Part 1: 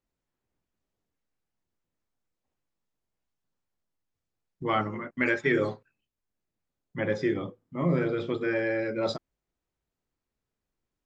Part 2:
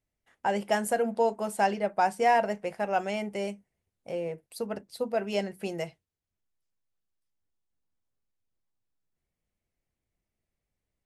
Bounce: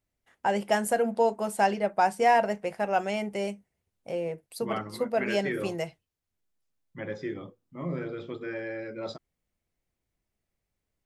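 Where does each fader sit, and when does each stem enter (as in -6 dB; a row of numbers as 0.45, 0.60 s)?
-7.5, +1.5 dB; 0.00, 0.00 s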